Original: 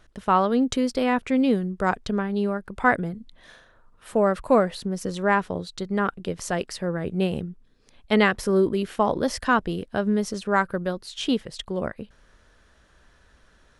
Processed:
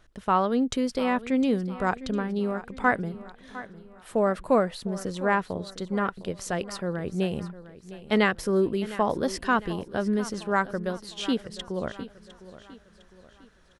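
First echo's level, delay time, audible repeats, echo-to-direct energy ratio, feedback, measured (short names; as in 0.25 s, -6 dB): -16.0 dB, 0.706 s, 3, -15.0 dB, 44%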